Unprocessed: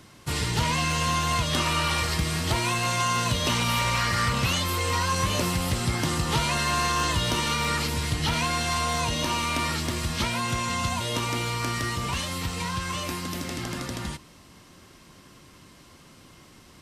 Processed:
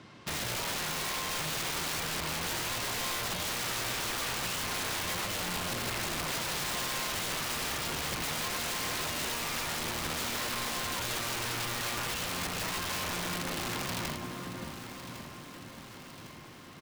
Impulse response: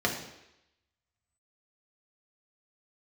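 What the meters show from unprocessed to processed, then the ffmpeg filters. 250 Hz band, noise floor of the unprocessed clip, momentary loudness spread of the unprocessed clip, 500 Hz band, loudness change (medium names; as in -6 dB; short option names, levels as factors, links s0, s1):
-10.0 dB, -52 dBFS, 7 LU, -7.0 dB, -7.0 dB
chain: -filter_complex "[0:a]highpass=110,lowpass=4100,asplit=2[s0][s1];[s1]adelay=577,lowpass=f=1900:p=1,volume=0.398,asplit=2[s2][s3];[s3]adelay=577,lowpass=f=1900:p=1,volume=0.49,asplit=2[s4][s5];[s5]adelay=577,lowpass=f=1900:p=1,volume=0.49,asplit=2[s6][s7];[s7]adelay=577,lowpass=f=1900:p=1,volume=0.49,asplit=2[s8][s9];[s9]adelay=577,lowpass=f=1900:p=1,volume=0.49,asplit=2[s10][s11];[s11]adelay=577,lowpass=f=1900:p=1,volume=0.49[s12];[s2][s4][s6][s8][s10][s12]amix=inputs=6:normalize=0[s13];[s0][s13]amix=inputs=2:normalize=0,acompressor=threshold=0.0316:ratio=5,aeval=exprs='(mod(28.2*val(0)+1,2)-1)/28.2':c=same,asplit=2[s14][s15];[s15]aecho=0:1:1105|2210|3315|4420|5525|6630:0.237|0.135|0.077|0.0439|0.025|0.0143[s16];[s14][s16]amix=inputs=2:normalize=0"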